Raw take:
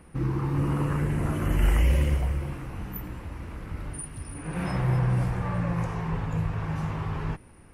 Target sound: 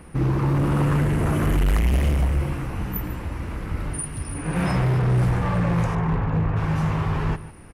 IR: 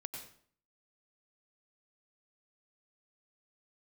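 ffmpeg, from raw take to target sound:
-filter_complex "[0:a]asettb=1/sr,asplit=3[link_01][link_02][link_03];[link_01]atrim=end=5.954[link_04];[link_02]atrim=start=5.95:end=6.57,asetpts=PTS-STARTPTS,afade=type=in:duration=0.004:curve=qsin,afade=type=out:start_time=0.616:duration=0.004:curve=qsin,lowpass=2100[link_05];[link_03]atrim=start=6.566[link_06];[link_04][link_05]acrossfade=duration=0.004:curve1=hsin:curve2=qsin[link_07];[link_07][link_06]acrossfade=duration=0.004:curve1=qsin:curve2=hsin,asoftclip=type=hard:threshold=-24.5dB,asplit=2[link_08][link_09];[link_09]adelay=145.8,volume=-15dB,highshelf=frequency=4000:gain=-3.28[link_10];[link_08][link_10]amix=inputs=2:normalize=0,volume=7.5dB"

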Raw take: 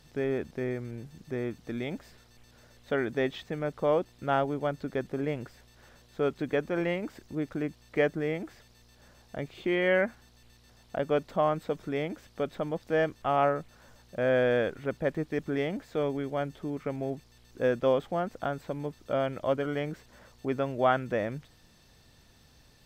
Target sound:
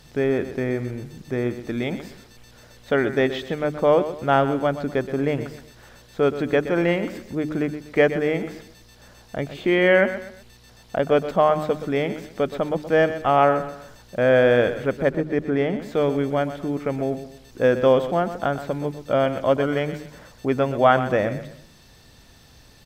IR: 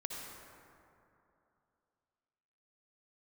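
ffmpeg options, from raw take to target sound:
-filter_complex "[0:a]bandreject=frequency=76.23:width_type=h:width=4,bandreject=frequency=152.46:width_type=h:width=4,bandreject=frequency=228.69:width_type=h:width=4,bandreject=frequency=304.92:width_type=h:width=4,bandreject=frequency=381.15:width_type=h:width=4,asettb=1/sr,asplit=3[link_01][link_02][link_03];[link_01]atrim=end=15.094[link_04];[link_02]atrim=start=15.09:end=15.82,asetpts=PTS-STARTPTS,afade=type=in:duration=0.004:curve=qsin,afade=type=out:start_time=0.726:duration=0.004:curve=qsin,highshelf=frequency=3400:gain=-11.5[link_05];[link_03]atrim=start=15.816[link_06];[link_04][link_05]acrossfade=duration=0.004:curve1=hsin:curve2=qsin[link_07];[link_07][link_06]acrossfade=duration=0.004:curve1=qsin:curve2=hsin,aecho=1:1:123|246|369:0.251|0.0854|0.029,volume=8.5dB"

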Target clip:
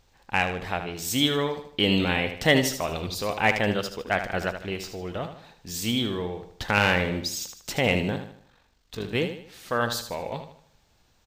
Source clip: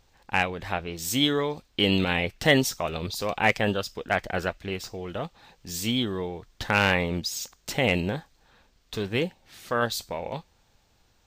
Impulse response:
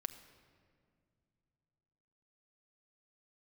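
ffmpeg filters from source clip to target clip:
-filter_complex "[0:a]asplit=3[link_01][link_02][link_03];[link_01]afade=type=out:start_time=8.15:duration=0.02[link_04];[link_02]tremolo=f=47:d=0.71,afade=type=in:start_time=8.15:duration=0.02,afade=type=out:start_time=9.13:duration=0.02[link_05];[link_03]afade=type=in:start_time=9.13:duration=0.02[link_06];[link_04][link_05][link_06]amix=inputs=3:normalize=0,aecho=1:1:77|154|231|308|385:0.355|0.145|0.0596|0.0245|0.01"

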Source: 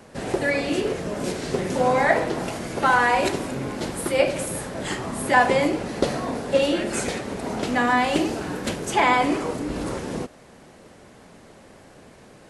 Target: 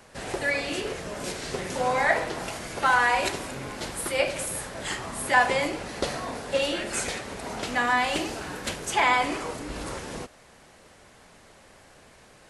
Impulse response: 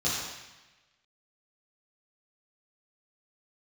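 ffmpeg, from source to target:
-af "equalizer=frequency=240:width_type=o:width=2.9:gain=-10"

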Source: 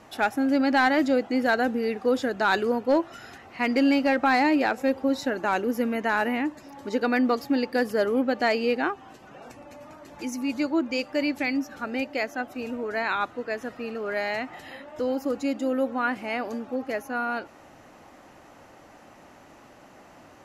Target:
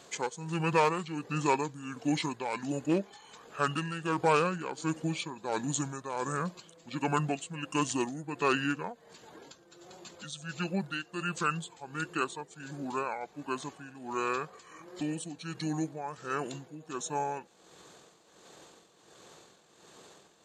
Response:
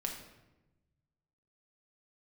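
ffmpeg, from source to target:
-af "tremolo=f=1.4:d=0.69,aemphasis=mode=production:type=riaa,asetrate=26222,aresample=44100,atempo=1.68179,volume=-3dB"

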